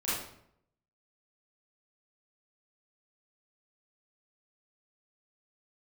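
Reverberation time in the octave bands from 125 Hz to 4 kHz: 0.90, 0.80, 0.75, 0.65, 0.60, 0.50 seconds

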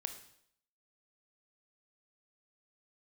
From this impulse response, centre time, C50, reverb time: 12 ms, 10.0 dB, 0.70 s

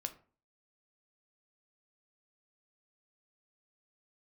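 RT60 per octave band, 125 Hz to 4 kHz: 0.50, 0.50, 0.40, 0.40, 0.35, 0.25 seconds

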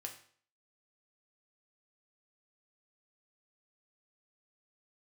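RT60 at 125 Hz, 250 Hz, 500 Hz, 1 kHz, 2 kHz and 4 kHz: 0.50, 0.50, 0.50, 0.50, 0.50, 0.50 seconds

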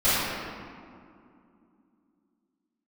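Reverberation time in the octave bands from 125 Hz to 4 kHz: 2.9, 3.9, 2.6, 2.4, 1.7, 1.2 seconds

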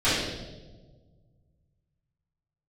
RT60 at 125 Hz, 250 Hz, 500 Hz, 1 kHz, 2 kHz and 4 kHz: 2.8, 1.9, 1.7, 1.2, 0.85, 1.0 seconds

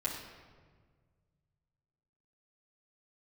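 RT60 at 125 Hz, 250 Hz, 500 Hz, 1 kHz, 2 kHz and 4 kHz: 2.9, 2.1, 1.8, 1.5, 1.3, 1.0 seconds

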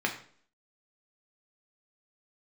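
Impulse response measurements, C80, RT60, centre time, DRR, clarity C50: 13.0 dB, 0.50 s, 16 ms, 1.0 dB, 10.0 dB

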